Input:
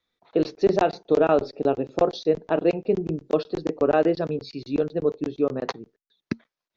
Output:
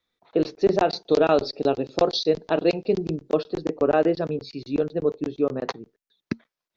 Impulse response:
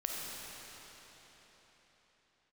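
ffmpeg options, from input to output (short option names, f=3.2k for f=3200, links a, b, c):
-filter_complex "[0:a]asettb=1/sr,asplit=3[a][b][c];[a]atrim=end=0.904[d];[b]atrim=start=0.9:end=3.16,asetpts=PTS-STARTPTS,afade=t=in:d=0.004:c=qsin,afade=t=out:st=2.256:d=0.004:c=qsin,equalizer=f=4.5k:w=1.3:g=13[e];[c]atrim=start=3.156[f];[d][e]acrossfade=d=0.004:c1=hsin:c2=qsin[g];[g][f]acrossfade=d=0.004:c1=qsin:c2=hsin"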